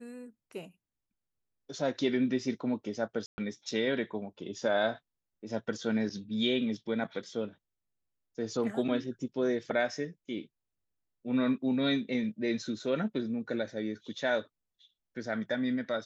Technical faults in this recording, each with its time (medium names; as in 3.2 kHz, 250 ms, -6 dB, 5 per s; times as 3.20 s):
3.26–3.38 s: dropout 120 ms